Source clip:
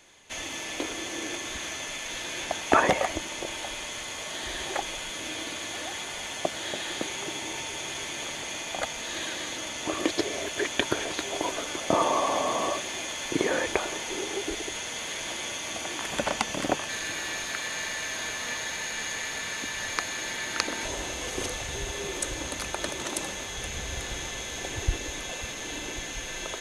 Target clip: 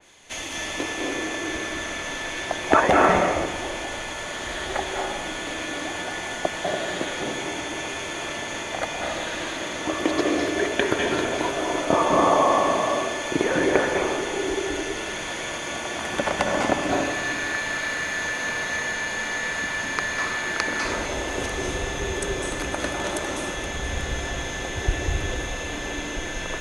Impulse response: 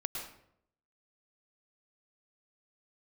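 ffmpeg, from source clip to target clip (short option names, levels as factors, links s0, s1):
-filter_complex "[1:a]atrim=start_sample=2205,asetrate=22932,aresample=44100[s0];[0:a][s0]afir=irnorm=-1:irlink=0,adynamicequalizer=threshold=0.0112:dfrequency=2600:dqfactor=0.7:tfrequency=2600:tqfactor=0.7:attack=5:release=100:ratio=0.375:range=3.5:mode=cutabove:tftype=highshelf,volume=1.12"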